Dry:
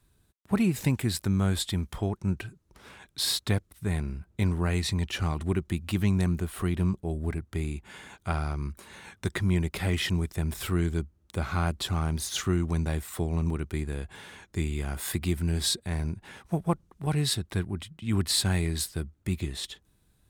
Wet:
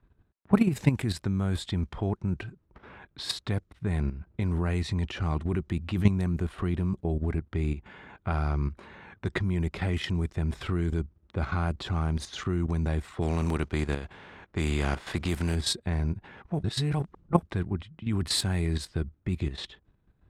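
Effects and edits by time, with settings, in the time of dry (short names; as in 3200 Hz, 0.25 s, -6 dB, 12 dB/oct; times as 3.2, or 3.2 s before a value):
13.21–15.54 spectral contrast lowered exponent 0.68
16.63–17.43 reverse
whole clip: low-pass opened by the level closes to 2100 Hz, open at -21 dBFS; high shelf 2900 Hz -8 dB; level quantiser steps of 11 dB; gain +6.5 dB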